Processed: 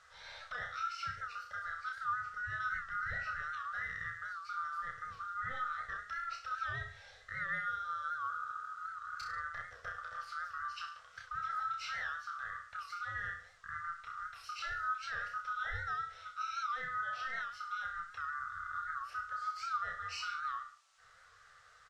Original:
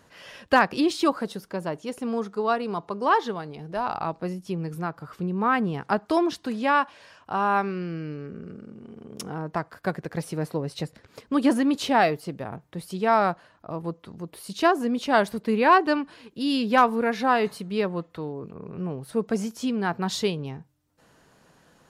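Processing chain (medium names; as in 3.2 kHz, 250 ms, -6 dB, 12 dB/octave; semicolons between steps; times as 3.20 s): split-band scrambler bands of 1 kHz; FFT filter 110 Hz 0 dB, 320 Hz -30 dB, 470 Hz -6 dB, 940 Hz -6 dB, 1.3 kHz +3 dB, 3.5 kHz -3 dB, 5 kHz 0 dB, 9.1 kHz -20 dB; compression, threshold -29 dBFS, peak gain reduction 15.5 dB; peak limiter -27.5 dBFS, peak gain reduction 10 dB; feedback comb 84 Hz, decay 0.21 s, harmonics all, mix 70%; on a send: reverse bouncing-ball echo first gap 30 ms, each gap 1.1×, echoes 5; on the sum: band noise 650–7700 Hz -72 dBFS; warped record 78 rpm, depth 100 cents; trim -1 dB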